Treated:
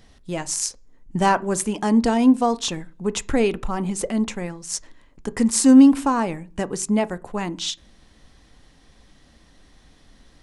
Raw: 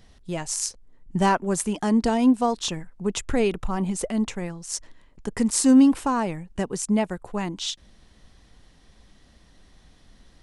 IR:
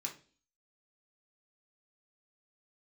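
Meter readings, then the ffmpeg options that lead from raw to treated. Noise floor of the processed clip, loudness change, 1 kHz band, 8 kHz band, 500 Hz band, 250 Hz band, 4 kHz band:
-54 dBFS, +3.0 dB, +3.0 dB, +2.5 dB, +2.5 dB, +3.5 dB, +2.5 dB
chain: -filter_complex "[0:a]asplit=2[s0][s1];[1:a]atrim=start_sample=2205,highshelf=f=2400:g=-11.5[s2];[s1][s2]afir=irnorm=-1:irlink=0,volume=0.422[s3];[s0][s3]amix=inputs=2:normalize=0,volume=1.19"

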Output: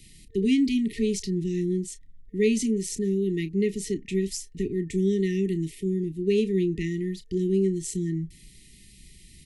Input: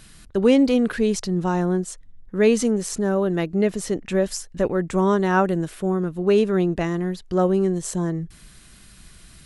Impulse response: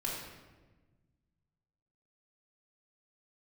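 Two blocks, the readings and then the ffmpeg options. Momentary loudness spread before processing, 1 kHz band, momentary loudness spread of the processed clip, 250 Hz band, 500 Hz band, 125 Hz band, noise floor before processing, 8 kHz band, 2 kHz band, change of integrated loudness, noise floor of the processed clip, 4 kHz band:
8 LU, under -40 dB, 8 LU, -3.5 dB, -6.5 dB, -3.5 dB, -48 dBFS, -3.5 dB, -9.0 dB, -5.0 dB, -52 dBFS, -3.5 dB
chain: -filter_complex "[0:a]afftfilt=real='re*(1-between(b*sr/4096,450,1800))':imag='im*(1-between(b*sr/4096,450,1800))':win_size=4096:overlap=0.75,asplit=2[s0][s1];[s1]adelay=31,volume=0.224[s2];[s0][s2]amix=inputs=2:normalize=0,acrossover=split=240|600|1500[s3][s4][s5][s6];[s5]acompressor=threshold=0.00251:ratio=6[s7];[s3][s4][s7][s6]amix=inputs=4:normalize=0,volume=0.668"

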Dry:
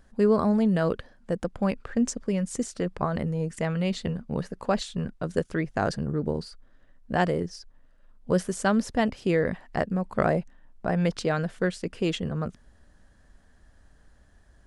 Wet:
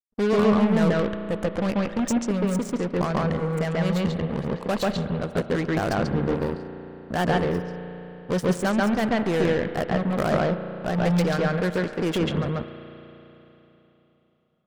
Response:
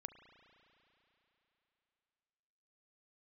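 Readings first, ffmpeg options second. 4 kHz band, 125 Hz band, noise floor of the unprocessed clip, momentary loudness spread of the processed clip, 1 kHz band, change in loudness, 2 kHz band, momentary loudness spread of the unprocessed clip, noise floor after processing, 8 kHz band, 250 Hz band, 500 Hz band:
+4.0 dB, +4.0 dB, -58 dBFS, 8 LU, +3.0 dB, +3.5 dB, +4.0 dB, 9 LU, -63 dBFS, 0.0 dB, +3.5 dB, +3.5 dB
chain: -filter_complex "[0:a]aeval=exprs='val(0)+0.5*0.0631*sgn(val(0))':c=same,acrusher=bits=3:mix=0:aa=0.5,asplit=2[s0][s1];[1:a]atrim=start_sample=2205,lowpass=4600,adelay=139[s2];[s1][s2]afir=irnorm=-1:irlink=0,volume=2.24[s3];[s0][s3]amix=inputs=2:normalize=0,volume=0.631"

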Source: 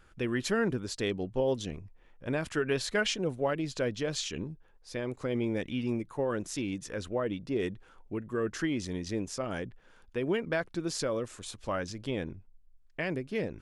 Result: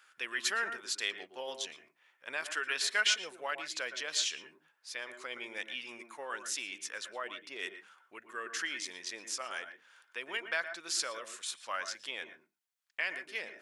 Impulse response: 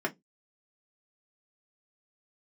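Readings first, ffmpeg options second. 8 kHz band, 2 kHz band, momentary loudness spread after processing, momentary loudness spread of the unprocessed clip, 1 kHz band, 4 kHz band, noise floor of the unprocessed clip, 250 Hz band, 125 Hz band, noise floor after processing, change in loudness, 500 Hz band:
+4.0 dB, +3.0 dB, 13 LU, 10 LU, -1.5 dB, +4.0 dB, -59 dBFS, -22.5 dB, under -30 dB, -75 dBFS, -3.0 dB, -13.5 dB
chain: -filter_complex "[0:a]highpass=1400,asplit=2[s0][s1];[1:a]atrim=start_sample=2205,adelay=114[s2];[s1][s2]afir=irnorm=-1:irlink=0,volume=0.141[s3];[s0][s3]amix=inputs=2:normalize=0,volume=1.58"

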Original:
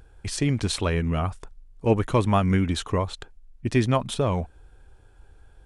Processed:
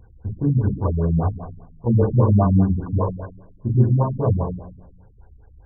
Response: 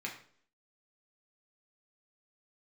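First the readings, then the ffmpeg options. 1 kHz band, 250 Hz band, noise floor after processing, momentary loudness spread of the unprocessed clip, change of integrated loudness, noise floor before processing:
-0.5 dB, +4.0 dB, -49 dBFS, 11 LU, +4.5 dB, -53 dBFS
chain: -filter_complex "[0:a]asuperstop=centerf=1300:order=4:qfactor=3.9[s0];[1:a]atrim=start_sample=2205,asetrate=25578,aresample=44100[s1];[s0][s1]afir=irnorm=-1:irlink=0,afftfilt=real='re*lt(b*sr/1024,250*pow(1700/250,0.5+0.5*sin(2*PI*5*pts/sr)))':imag='im*lt(b*sr/1024,250*pow(1700/250,0.5+0.5*sin(2*PI*5*pts/sr)))':win_size=1024:overlap=0.75"

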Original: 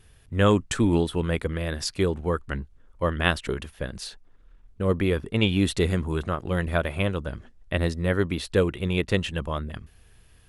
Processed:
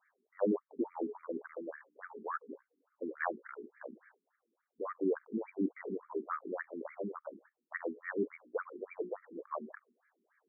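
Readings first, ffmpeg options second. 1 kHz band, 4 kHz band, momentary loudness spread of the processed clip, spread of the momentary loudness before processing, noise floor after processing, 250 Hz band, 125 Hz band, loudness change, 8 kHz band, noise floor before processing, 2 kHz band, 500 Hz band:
-10.0 dB, under -40 dB, 16 LU, 12 LU, under -85 dBFS, -13.0 dB, -30.0 dB, -14.0 dB, under -40 dB, -56 dBFS, -14.5 dB, -12.0 dB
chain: -af "bandreject=f=60:t=h:w=6,bandreject=f=120:t=h:w=6,bandreject=f=180:t=h:w=6,bandreject=f=240:t=h:w=6,bandreject=f=300:t=h:w=6,bandreject=f=360:t=h:w=6,bandreject=f=420:t=h:w=6,bandreject=f=480:t=h:w=6,bandreject=f=540:t=h:w=6,afftfilt=real='re*between(b*sr/1024,280*pow(1700/280,0.5+0.5*sin(2*PI*3.5*pts/sr))/1.41,280*pow(1700/280,0.5+0.5*sin(2*PI*3.5*pts/sr))*1.41)':imag='im*between(b*sr/1024,280*pow(1700/280,0.5+0.5*sin(2*PI*3.5*pts/sr))/1.41,280*pow(1700/280,0.5+0.5*sin(2*PI*3.5*pts/sr))*1.41)':win_size=1024:overlap=0.75,volume=0.596"

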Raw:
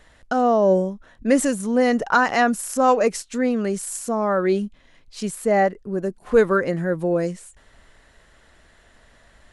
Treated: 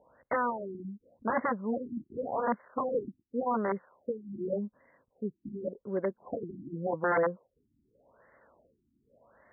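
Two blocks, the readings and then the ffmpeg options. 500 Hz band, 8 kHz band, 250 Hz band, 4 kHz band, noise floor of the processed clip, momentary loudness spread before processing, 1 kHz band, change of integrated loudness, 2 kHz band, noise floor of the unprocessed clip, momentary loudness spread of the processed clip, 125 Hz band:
-13.0 dB, under -40 dB, -14.0 dB, under -40 dB, -79 dBFS, 10 LU, -11.5 dB, -13.0 dB, -13.0 dB, -55 dBFS, 10 LU, -13.0 dB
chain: -af "aeval=exprs='(mod(6.31*val(0)+1,2)-1)/6.31':c=same,highpass=150,equalizer=f=170:t=q:w=4:g=-4,equalizer=f=330:t=q:w=4:g=-3,equalizer=f=530:t=q:w=4:g=8,equalizer=f=1000:t=q:w=4:g=5,lowpass=f=2800:w=0.5412,lowpass=f=2800:w=1.3066,afftfilt=real='re*lt(b*sr/1024,340*pow(2200/340,0.5+0.5*sin(2*PI*0.87*pts/sr)))':imag='im*lt(b*sr/1024,340*pow(2200/340,0.5+0.5*sin(2*PI*0.87*pts/sr)))':win_size=1024:overlap=0.75,volume=0.473"

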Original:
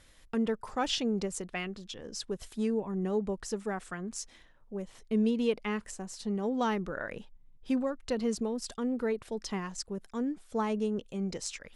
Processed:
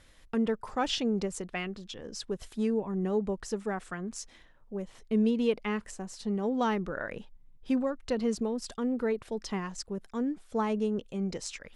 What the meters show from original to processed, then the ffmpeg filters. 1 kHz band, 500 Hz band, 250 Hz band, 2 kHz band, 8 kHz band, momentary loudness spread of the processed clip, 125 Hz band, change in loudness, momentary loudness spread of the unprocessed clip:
+1.5 dB, +1.5 dB, +1.5 dB, +1.0 dB, -2.0 dB, 11 LU, +1.5 dB, +1.5 dB, 10 LU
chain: -af "highshelf=f=5200:g=-5,volume=1.19"

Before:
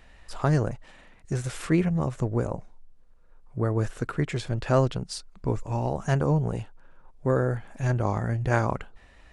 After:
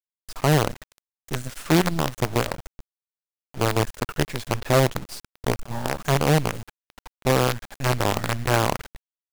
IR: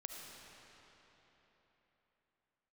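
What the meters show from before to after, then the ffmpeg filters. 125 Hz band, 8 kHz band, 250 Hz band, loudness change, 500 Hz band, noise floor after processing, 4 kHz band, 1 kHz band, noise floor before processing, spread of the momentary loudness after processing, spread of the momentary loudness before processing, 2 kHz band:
+0.5 dB, +11.0 dB, +2.0 dB, +3.5 dB, +3.5 dB, under -85 dBFS, +13.0 dB, +6.5 dB, -53 dBFS, 13 LU, 11 LU, +7.5 dB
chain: -af "acrusher=bits=4:dc=4:mix=0:aa=0.000001,volume=1.33"

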